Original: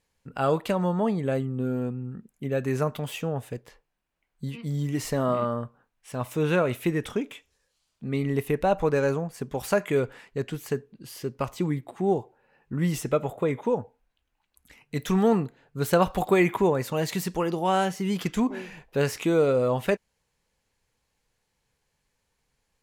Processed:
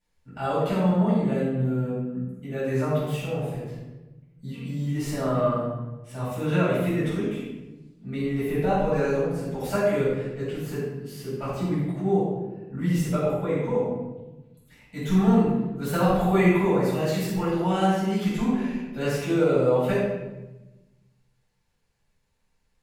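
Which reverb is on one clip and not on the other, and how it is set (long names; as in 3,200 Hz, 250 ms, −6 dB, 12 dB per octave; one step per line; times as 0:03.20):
rectangular room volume 540 cubic metres, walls mixed, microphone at 7.5 metres
level −14.5 dB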